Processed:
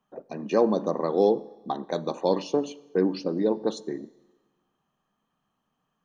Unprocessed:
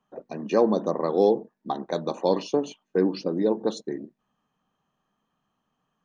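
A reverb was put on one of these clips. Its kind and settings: Schroeder reverb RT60 1.3 s, combs from 28 ms, DRR 20 dB; trim -1 dB

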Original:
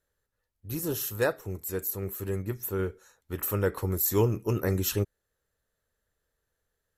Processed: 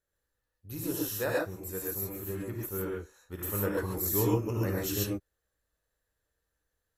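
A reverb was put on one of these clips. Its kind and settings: gated-style reverb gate 160 ms rising, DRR -3.5 dB; trim -7 dB

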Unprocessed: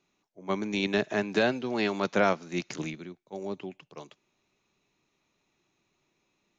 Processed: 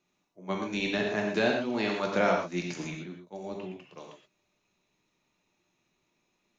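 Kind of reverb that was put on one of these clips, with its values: gated-style reverb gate 150 ms flat, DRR 0 dB; trim -3.5 dB

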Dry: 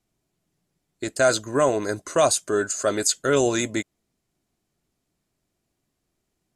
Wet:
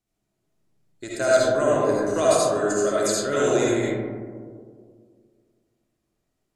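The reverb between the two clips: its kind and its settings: algorithmic reverb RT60 2 s, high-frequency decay 0.25×, pre-delay 30 ms, DRR -6.5 dB; trim -7.5 dB

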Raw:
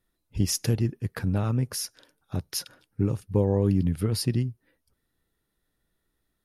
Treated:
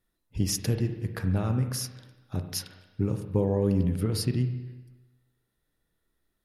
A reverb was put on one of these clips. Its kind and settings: spring tank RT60 1.1 s, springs 32/45 ms, chirp 40 ms, DRR 6.5 dB; trim -2 dB

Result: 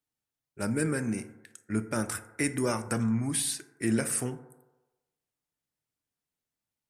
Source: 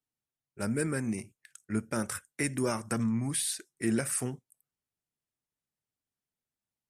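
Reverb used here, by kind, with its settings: FDN reverb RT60 1.1 s, low-frequency decay 0.7×, high-frequency decay 0.3×, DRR 10 dB; trim +1.5 dB

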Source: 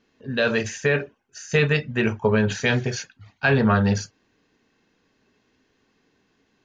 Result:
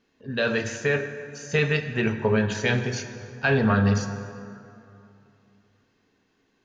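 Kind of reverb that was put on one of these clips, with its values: plate-style reverb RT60 2.8 s, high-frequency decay 0.55×, DRR 8 dB; trim -3 dB

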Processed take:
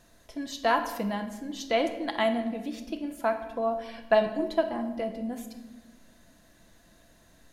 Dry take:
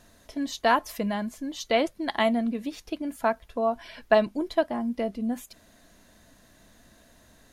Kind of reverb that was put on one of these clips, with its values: simulated room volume 670 m³, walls mixed, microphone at 0.74 m; trim -3.5 dB

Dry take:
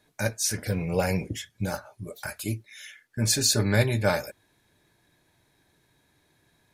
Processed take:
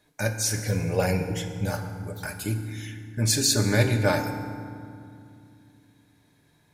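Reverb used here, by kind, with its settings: FDN reverb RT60 2.4 s, low-frequency decay 1.5×, high-frequency decay 0.55×, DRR 6 dB

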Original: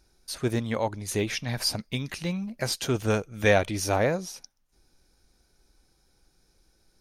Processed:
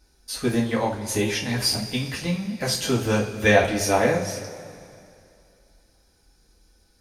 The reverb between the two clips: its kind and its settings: two-slope reverb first 0.28 s, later 2.5 s, from -18 dB, DRR -4.5 dB; trim -1 dB

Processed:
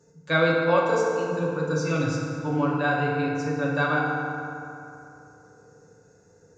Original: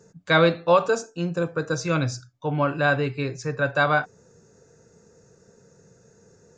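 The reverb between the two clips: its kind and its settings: FDN reverb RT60 2.9 s, high-frequency decay 0.5×, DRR -3 dB; trim -7 dB

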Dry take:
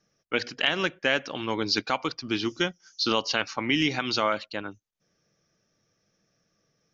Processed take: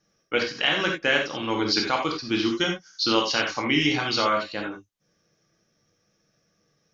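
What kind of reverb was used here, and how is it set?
gated-style reverb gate 110 ms flat, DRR 0 dB

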